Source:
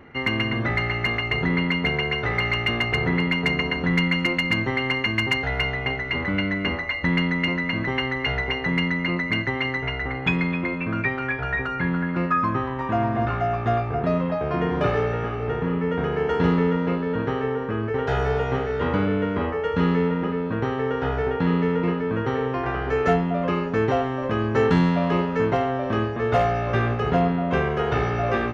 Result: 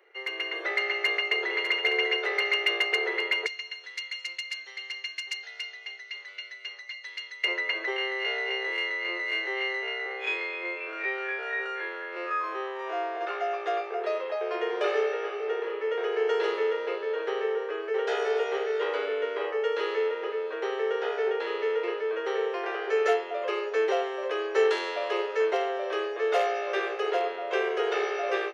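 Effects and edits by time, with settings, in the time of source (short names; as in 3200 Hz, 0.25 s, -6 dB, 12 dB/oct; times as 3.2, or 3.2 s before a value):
0.89–1.56 echo throw 0.6 s, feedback 40%, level -7 dB
3.46–7.44 band-pass 5500 Hz, Q 1.6
7.96–13.21 time blur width 85 ms
whole clip: steep high-pass 380 Hz 72 dB/oct; bell 970 Hz -10.5 dB 1.9 oct; AGC gain up to 8.5 dB; gain -5.5 dB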